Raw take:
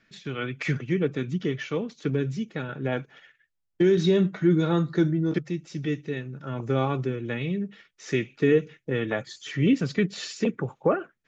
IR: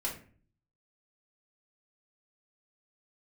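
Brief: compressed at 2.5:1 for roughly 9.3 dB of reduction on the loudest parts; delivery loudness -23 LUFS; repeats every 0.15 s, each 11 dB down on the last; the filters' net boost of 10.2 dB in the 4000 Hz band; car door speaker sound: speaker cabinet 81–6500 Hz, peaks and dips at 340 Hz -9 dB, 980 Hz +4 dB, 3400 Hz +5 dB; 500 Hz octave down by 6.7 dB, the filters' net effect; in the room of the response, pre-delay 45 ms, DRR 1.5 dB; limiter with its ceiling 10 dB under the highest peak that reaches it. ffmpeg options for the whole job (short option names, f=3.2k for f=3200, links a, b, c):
-filter_complex "[0:a]equalizer=f=500:t=o:g=-5,equalizer=f=4k:t=o:g=8.5,acompressor=threshold=-32dB:ratio=2.5,alimiter=level_in=4dB:limit=-24dB:level=0:latency=1,volume=-4dB,aecho=1:1:150|300|450:0.282|0.0789|0.0221,asplit=2[a][b];[1:a]atrim=start_sample=2205,adelay=45[c];[b][c]afir=irnorm=-1:irlink=0,volume=-4.5dB[d];[a][d]amix=inputs=2:normalize=0,highpass=81,equalizer=f=340:t=q:w=4:g=-9,equalizer=f=980:t=q:w=4:g=4,equalizer=f=3.4k:t=q:w=4:g=5,lowpass=f=6.5k:w=0.5412,lowpass=f=6.5k:w=1.3066,volume=12dB"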